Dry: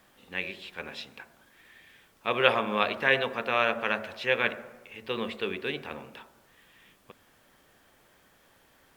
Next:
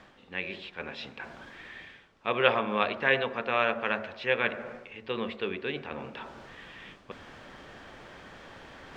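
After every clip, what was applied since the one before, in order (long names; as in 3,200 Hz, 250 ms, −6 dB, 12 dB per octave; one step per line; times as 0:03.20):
reversed playback
upward compression, threshold −32 dBFS
reversed playback
high-frequency loss of the air 140 metres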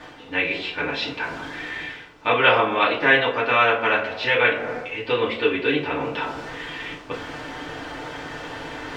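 in parallel at +2 dB: downward compressor, threshold −35 dBFS, peak gain reduction 17.5 dB
on the sum: feedback delay network reverb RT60 0.32 s, low-frequency decay 0.75×, high-frequency decay 0.95×, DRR −6.5 dB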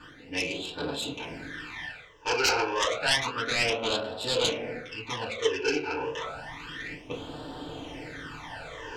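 phase distortion by the signal itself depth 0.32 ms
all-pass phaser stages 12, 0.3 Hz, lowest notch 190–2,100 Hz
level −3.5 dB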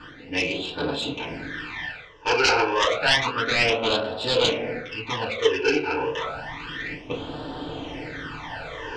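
low-pass filter 4,700 Hz 12 dB per octave
level +6 dB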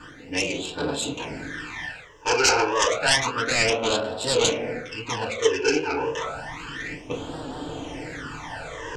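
high shelf with overshoot 5,500 Hz +12 dB, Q 1.5
wow of a warped record 78 rpm, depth 100 cents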